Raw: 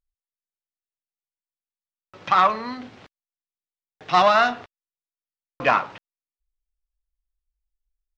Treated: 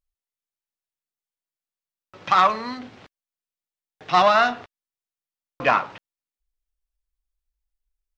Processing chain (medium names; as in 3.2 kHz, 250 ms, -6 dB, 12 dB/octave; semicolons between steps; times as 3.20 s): 2.29–2.79 s: treble shelf 6.1 kHz +10.5 dB